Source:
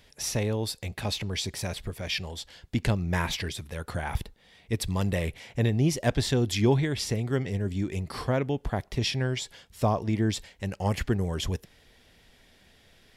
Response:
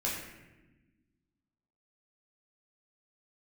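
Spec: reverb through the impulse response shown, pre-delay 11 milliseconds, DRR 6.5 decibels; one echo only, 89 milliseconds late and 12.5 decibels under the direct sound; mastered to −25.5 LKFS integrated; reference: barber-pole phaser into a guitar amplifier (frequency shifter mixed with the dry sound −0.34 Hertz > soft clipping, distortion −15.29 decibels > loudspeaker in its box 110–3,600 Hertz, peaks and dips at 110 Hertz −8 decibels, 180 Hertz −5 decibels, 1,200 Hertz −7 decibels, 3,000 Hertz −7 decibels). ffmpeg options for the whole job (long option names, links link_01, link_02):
-filter_complex "[0:a]aecho=1:1:89:0.237,asplit=2[link_01][link_02];[1:a]atrim=start_sample=2205,adelay=11[link_03];[link_02][link_03]afir=irnorm=-1:irlink=0,volume=-12dB[link_04];[link_01][link_04]amix=inputs=2:normalize=0,asplit=2[link_05][link_06];[link_06]afreqshift=-0.34[link_07];[link_05][link_07]amix=inputs=2:normalize=1,asoftclip=threshold=-22.5dB,highpass=110,equalizer=frequency=110:width_type=q:width=4:gain=-8,equalizer=frequency=180:width_type=q:width=4:gain=-5,equalizer=frequency=1200:width_type=q:width=4:gain=-7,equalizer=frequency=3000:width_type=q:width=4:gain=-7,lowpass=frequency=3600:width=0.5412,lowpass=frequency=3600:width=1.3066,volume=10.5dB"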